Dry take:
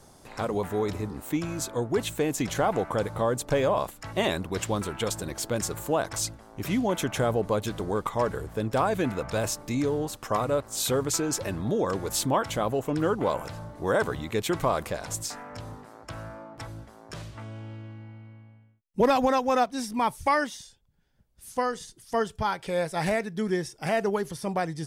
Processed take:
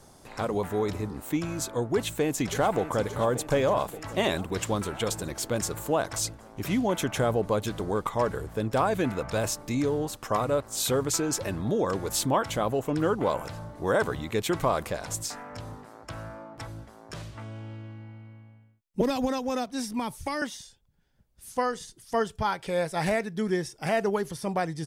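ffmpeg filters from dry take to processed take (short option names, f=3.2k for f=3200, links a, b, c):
-filter_complex "[0:a]asplit=2[a][b];[b]afade=t=in:st=1.94:d=0.01,afade=t=out:st=2.99:d=0.01,aecho=0:1:580|1160|1740|2320|2900|3480|4060|4640|5220:0.223872|0.15671|0.109697|0.0767881|0.0537517|0.0376262|0.0263383|0.0184368|0.0129058[c];[a][c]amix=inputs=2:normalize=0,asettb=1/sr,asplit=3[d][e][f];[d]atrim=end=19.014[g];[e]atrim=start=19.01:end=20.42,asetpts=PTS-STARTPTS,afade=t=in:d=0.004:c=qsin,afade=t=out:st=1.406:d=0.004:c=qsin,acrossover=split=400|3000[h][i][j];[i]acompressor=threshold=-31dB:ratio=6:attack=3.2:release=140:knee=2.83:detection=peak[k];[h][k][j]amix=inputs=3:normalize=0[l];[f]atrim=start=20.416[m];[g][l]acrossfade=d=0.004:c1=hsin:c2=qsin[n];[n][m]acrossfade=d=0.004:c1=qsin:c2=hsin"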